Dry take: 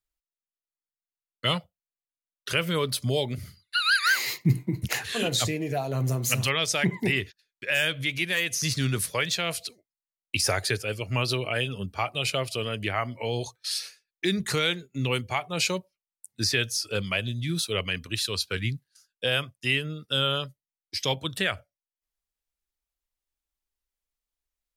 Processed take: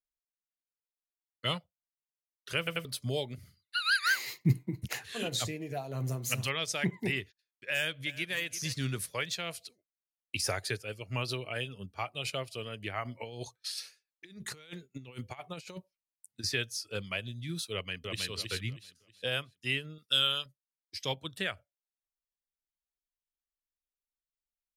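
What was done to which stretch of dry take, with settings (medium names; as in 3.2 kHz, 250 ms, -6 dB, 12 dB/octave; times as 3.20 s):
2.58 s: stutter in place 0.09 s, 3 plays
7.72–8.38 s: echo throw 340 ms, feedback 20%, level -15 dB
13.05–16.44 s: compressor with a negative ratio -31 dBFS, ratio -0.5
17.72–18.28 s: echo throw 320 ms, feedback 35%, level -2.5 dB
19.98–20.46 s: tilt shelf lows -8 dB, about 1.4 kHz
whole clip: upward expansion 1.5:1, over -37 dBFS; trim -3.5 dB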